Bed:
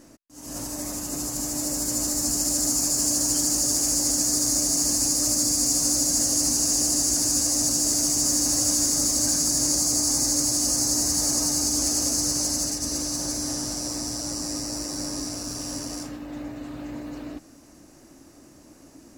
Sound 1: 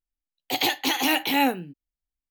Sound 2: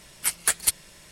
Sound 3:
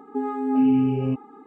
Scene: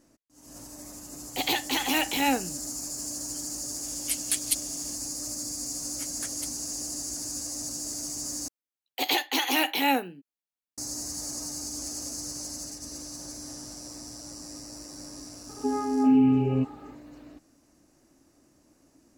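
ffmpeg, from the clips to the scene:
ffmpeg -i bed.wav -i cue0.wav -i cue1.wav -i cue2.wav -filter_complex "[1:a]asplit=2[link_01][link_02];[2:a]asplit=2[link_03][link_04];[0:a]volume=-12dB[link_05];[link_03]highshelf=frequency=2000:width_type=q:width=1.5:gain=12[link_06];[link_02]highpass=240[link_07];[link_05]asplit=2[link_08][link_09];[link_08]atrim=end=8.484[link_10];[link_07]atrim=end=2.3,asetpts=PTS-STARTPTS,volume=-2dB[link_11];[link_09]atrim=start=10.776[link_12];[link_01]atrim=end=2.3,asetpts=PTS-STARTPTS,volume=-3.5dB,afade=type=in:duration=0.004:curve=hsin,afade=type=out:start_time=2.296:duration=0.004:curve=hsin,adelay=860[link_13];[link_06]atrim=end=1.11,asetpts=PTS-STARTPTS,volume=-17dB,afade=type=in:duration=0.004:curve=hsin,afade=type=out:start_time=1.106:duration=0.004:curve=hsin,adelay=3840[link_14];[link_04]atrim=end=1.11,asetpts=PTS-STARTPTS,volume=-16.5dB,afade=type=in:duration=0.004:curve=hsin,afade=type=out:start_time=1.106:duration=0.004:curve=hsin,adelay=5750[link_15];[3:a]atrim=end=1.46,asetpts=PTS-STARTPTS,volume=-1dB,afade=type=in:duration=0.004:curve=hsin,afade=type=out:start_time=1.456:duration=0.004:curve=hsin,adelay=15490[link_16];[link_10][link_11]acrossfade=duration=0.004:curve1=hsin:curve2=hsin[link_17];[link_17][link_12]acrossfade=duration=0.004:curve1=hsin:curve2=hsin[link_18];[link_18][link_13][link_14][link_15][link_16]amix=inputs=5:normalize=0" out.wav

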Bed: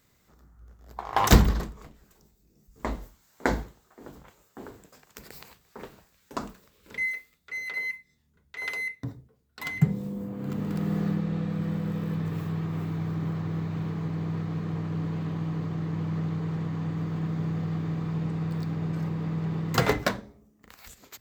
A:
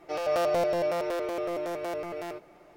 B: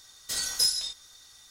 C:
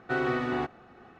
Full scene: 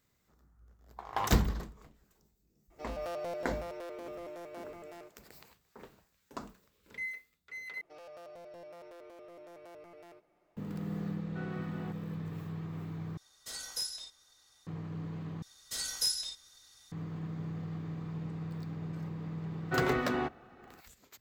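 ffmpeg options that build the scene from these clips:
ffmpeg -i bed.wav -i cue0.wav -i cue1.wav -i cue2.wav -filter_complex "[1:a]asplit=2[link_01][link_02];[3:a]asplit=2[link_03][link_04];[2:a]asplit=2[link_05][link_06];[0:a]volume=-9.5dB[link_07];[link_02]acompressor=threshold=-28dB:ratio=6:attack=0.11:release=126:knee=1:detection=peak[link_08];[link_05]equalizer=frequency=690:width=0.54:gain=5.5[link_09];[link_07]asplit=4[link_10][link_11][link_12][link_13];[link_10]atrim=end=7.814[link_14];[link_08]atrim=end=2.76,asetpts=PTS-STARTPTS,volume=-17.5dB[link_15];[link_11]atrim=start=10.566:end=13.174[link_16];[link_09]atrim=end=1.5,asetpts=PTS-STARTPTS,volume=-12.5dB[link_17];[link_12]atrim=start=14.666:end=15.424[link_18];[link_06]atrim=end=1.5,asetpts=PTS-STARTPTS,volume=-6.5dB[link_19];[link_13]atrim=start=16.916[link_20];[link_01]atrim=end=2.76,asetpts=PTS-STARTPTS,volume=-12.5dB,afade=type=in:duration=0.004:curve=hsin,afade=type=out:start_time=2.756:duration=0.004:curve=hsin,adelay=2700[link_21];[link_03]atrim=end=1.19,asetpts=PTS-STARTPTS,volume=-17dB,afade=type=in:duration=0.004:curve=hsin,afade=type=out:start_time=1.186:duration=0.004:curve=hsin,adelay=11260[link_22];[link_04]atrim=end=1.19,asetpts=PTS-STARTPTS,volume=-3dB,afade=type=in:duration=0.004:curve=hsin,afade=type=out:start_time=1.186:duration=0.004:curve=hsin,adelay=19620[link_23];[link_14][link_15]acrossfade=duration=0.004:curve1=hsin:curve2=hsin[link_24];[link_24][link_16]acrossfade=duration=0.004:curve1=hsin:curve2=hsin[link_25];[link_25][link_17]acrossfade=duration=0.004:curve1=hsin:curve2=hsin[link_26];[link_26][link_18]acrossfade=duration=0.004:curve1=hsin:curve2=hsin[link_27];[link_27][link_19]acrossfade=duration=0.004:curve1=hsin:curve2=hsin[link_28];[link_28][link_20]acrossfade=duration=0.004:curve1=hsin:curve2=hsin[link_29];[link_29][link_21][link_22][link_23]amix=inputs=4:normalize=0" out.wav

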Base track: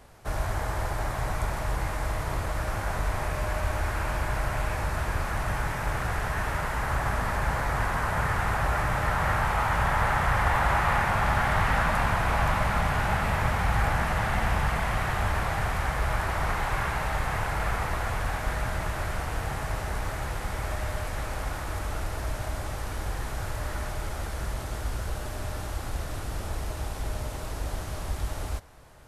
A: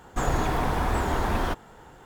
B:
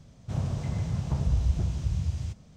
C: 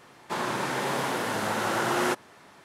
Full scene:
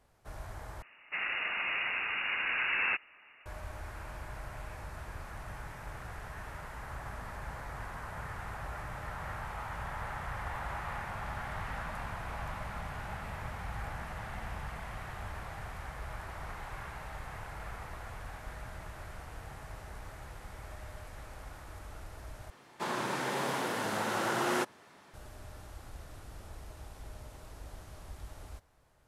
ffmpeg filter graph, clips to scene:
ffmpeg -i bed.wav -i cue0.wav -i cue1.wav -i cue2.wav -filter_complex "[3:a]asplit=2[link_01][link_02];[0:a]volume=-15dB[link_03];[link_01]lowpass=frequency=2600:width_type=q:width=0.5098,lowpass=frequency=2600:width_type=q:width=0.6013,lowpass=frequency=2600:width_type=q:width=0.9,lowpass=frequency=2600:width_type=q:width=2.563,afreqshift=-3000[link_04];[link_03]asplit=3[link_05][link_06][link_07];[link_05]atrim=end=0.824[link_08];[link_04]atrim=end=2.64,asetpts=PTS-STARTPTS,volume=-5dB[link_09];[link_06]atrim=start=3.456:end=22.504[link_10];[link_02]atrim=end=2.64,asetpts=PTS-STARTPTS,volume=-5dB[link_11];[link_07]atrim=start=25.136[link_12];[link_08][link_09]acrossfade=duration=0.004:curve1=hsin:curve2=hsin[link_13];[link_13][link_10]acrossfade=duration=0.004:curve1=hsin:curve2=hsin[link_14];[link_14][link_11]acrossfade=duration=0.004:curve1=hsin:curve2=hsin[link_15];[link_15][link_12]acrossfade=duration=0.004:curve1=hsin:curve2=hsin" out.wav

